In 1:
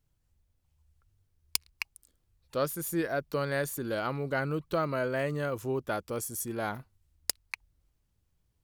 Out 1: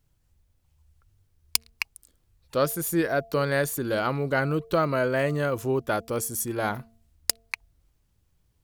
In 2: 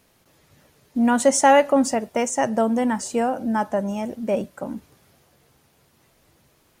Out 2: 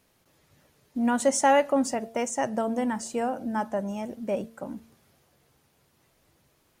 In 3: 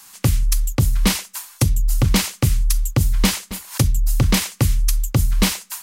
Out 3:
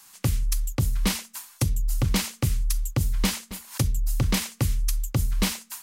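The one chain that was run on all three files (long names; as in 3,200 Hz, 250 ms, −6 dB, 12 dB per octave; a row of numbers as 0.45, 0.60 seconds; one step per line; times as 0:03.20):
hum removal 226.9 Hz, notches 3
loudness normalisation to −27 LKFS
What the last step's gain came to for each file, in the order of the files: +6.0, −6.0, −7.0 decibels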